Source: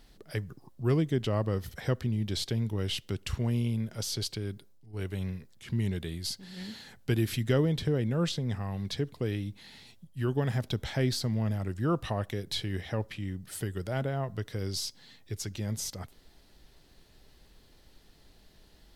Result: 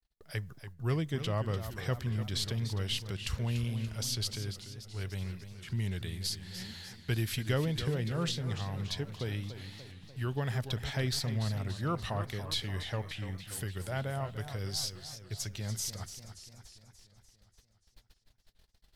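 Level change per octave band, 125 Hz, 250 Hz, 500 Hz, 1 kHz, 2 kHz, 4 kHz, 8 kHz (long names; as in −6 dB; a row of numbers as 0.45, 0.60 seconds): −2.5, −6.5, −6.0, −1.5, 0.0, +0.5, +0.5 decibels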